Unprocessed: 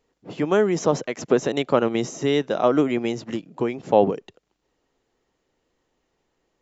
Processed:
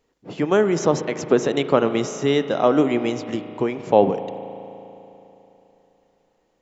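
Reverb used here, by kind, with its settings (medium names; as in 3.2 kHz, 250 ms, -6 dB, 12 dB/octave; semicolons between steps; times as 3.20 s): spring tank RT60 3.3 s, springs 36 ms, chirp 55 ms, DRR 10.5 dB; trim +1.5 dB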